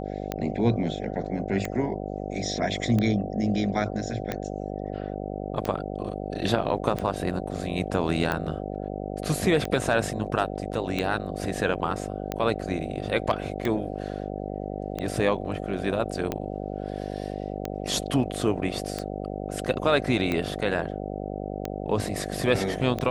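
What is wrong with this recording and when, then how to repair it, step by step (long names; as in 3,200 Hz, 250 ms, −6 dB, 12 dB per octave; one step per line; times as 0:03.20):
mains buzz 50 Hz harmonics 15 −33 dBFS
scratch tick 45 rpm −14 dBFS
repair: click removal
hum removal 50 Hz, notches 15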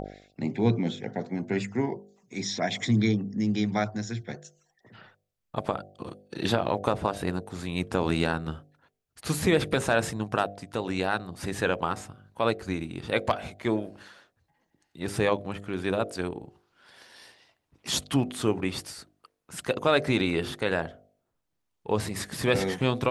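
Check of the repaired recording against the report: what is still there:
none of them is left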